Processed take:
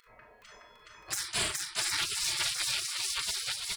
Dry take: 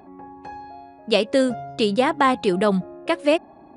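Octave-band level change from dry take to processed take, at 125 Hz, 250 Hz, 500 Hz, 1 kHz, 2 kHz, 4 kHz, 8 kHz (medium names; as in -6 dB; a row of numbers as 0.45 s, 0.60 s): -19.0 dB, -31.5 dB, -29.5 dB, -19.5 dB, -7.0 dB, -0.5 dB, +12.0 dB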